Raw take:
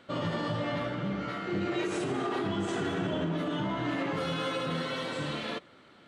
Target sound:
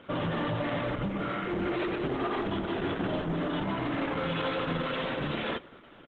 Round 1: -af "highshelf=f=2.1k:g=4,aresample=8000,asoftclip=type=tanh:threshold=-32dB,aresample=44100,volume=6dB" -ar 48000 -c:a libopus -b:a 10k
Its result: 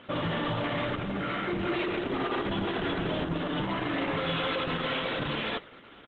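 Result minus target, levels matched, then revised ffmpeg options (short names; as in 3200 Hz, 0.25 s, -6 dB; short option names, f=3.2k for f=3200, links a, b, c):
4000 Hz band +4.0 dB
-af "highshelf=f=2.1k:g=-3.5,aresample=8000,asoftclip=type=tanh:threshold=-32dB,aresample=44100,volume=6dB" -ar 48000 -c:a libopus -b:a 10k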